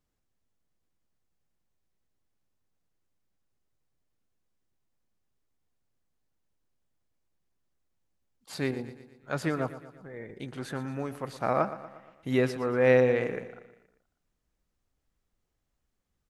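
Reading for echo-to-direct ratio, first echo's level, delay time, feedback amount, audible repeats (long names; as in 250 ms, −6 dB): −12.5 dB, −14.0 dB, 118 ms, 53%, 4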